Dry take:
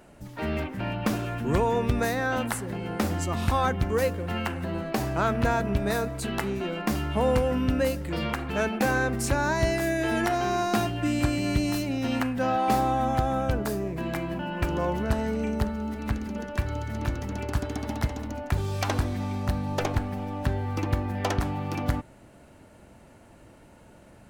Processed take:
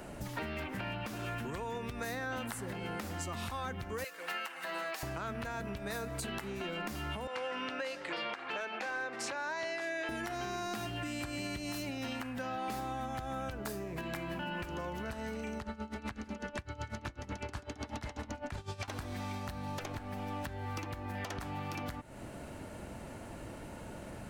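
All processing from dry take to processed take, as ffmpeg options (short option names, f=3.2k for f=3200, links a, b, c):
-filter_complex "[0:a]asettb=1/sr,asplit=3[a][b][c];[a]atrim=end=4.044[d];[b]atrim=start=4.04:end=5.03,asetpts=PTS-STARTPTS,afade=t=in:d=0.004:c=qsin,afade=t=out:st=0.986:d=0.004:c=qsin,highpass=1.2k,aecho=1:1:6.2:0.52,atrim=end_sample=43659[e];[c]atrim=start=5.026[f];[d][e]acrossfade=d=0.004:c1=hsin:c2=qsin[g];[g][f]acrossfade=d=0.004:c1=qsin:c2=hsin,asettb=1/sr,asplit=3[h][i][j];[h]atrim=end=7.274[k];[i]atrim=start=7.27:end=10.09,asetpts=PTS-STARTPTS,afade=t=in:d=0.004:c=qsin,afade=t=out:st=2.816:d=0.004:c=qsin,highpass=770,lowpass=4.6k,asoftclip=type=hard:threshold=-20dB[l];[j]atrim=start=10.086[m];[k][l]acrossfade=d=0.004:c1=hsin:c2=qsin[n];[n][m]acrossfade=d=0.004:c1=qsin:c2=hsin,asettb=1/sr,asplit=3[o][p][q];[o]atrim=end=15.584[r];[p]atrim=start=15.58:end=18.88,asetpts=PTS-STARTPTS,afade=t=in:d=0.004:c=qsin,afade=t=out:st=3.296:d=0.004:c=qsin,lowpass=8.2k,aeval=exprs='val(0)*pow(10,-19*(0.5-0.5*cos(2*PI*8*n/s))/20)':c=same[s];[q]atrim=start=18.876[t];[r][s]acrossfade=d=0.004:c1=hsin:c2=qsin[u];[u][t]acrossfade=d=0.004:c1=qsin:c2=hsin,acompressor=threshold=-35dB:ratio=3,alimiter=level_in=6dB:limit=-24dB:level=0:latency=1:release=320,volume=-6dB,acrossover=split=550|1100[v][w][x];[v]acompressor=threshold=-47dB:ratio=4[y];[w]acompressor=threshold=-54dB:ratio=4[z];[x]acompressor=threshold=-45dB:ratio=4[aa];[y][z][aa]amix=inputs=3:normalize=0,volume=6.5dB"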